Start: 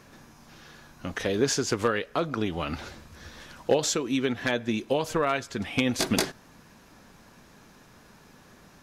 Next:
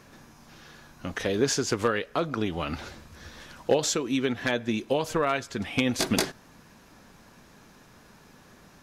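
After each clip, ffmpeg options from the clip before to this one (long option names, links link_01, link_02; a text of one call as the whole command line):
ffmpeg -i in.wav -af anull out.wav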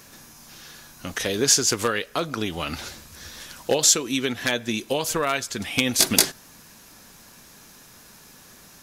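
ffmpeg -i in.wav -af "crystalizer=i=4:c=0,asoftclip=type=hard:threshold=-2.5dB" out.wav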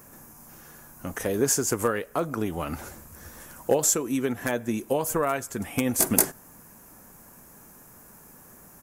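ffmpeg -i in.wav -af "firequalizer=gain_entry='entry(890,0);entry(3800,-20);entry(7500,-3);entry(15000,4)':delay=0.05:min_phase=1" out.wav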